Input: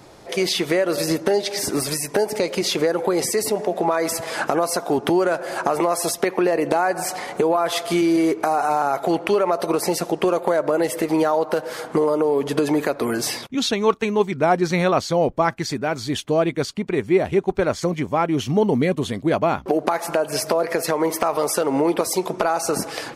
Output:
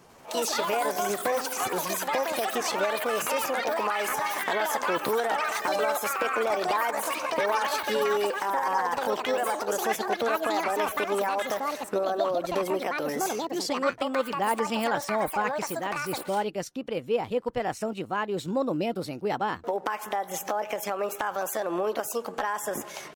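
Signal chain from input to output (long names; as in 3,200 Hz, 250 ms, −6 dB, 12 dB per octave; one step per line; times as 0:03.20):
delay with pitch and tempo change per echo 98 ms, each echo +6 semitones, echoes 3
pitch shifter +4 semitones
level −9 dB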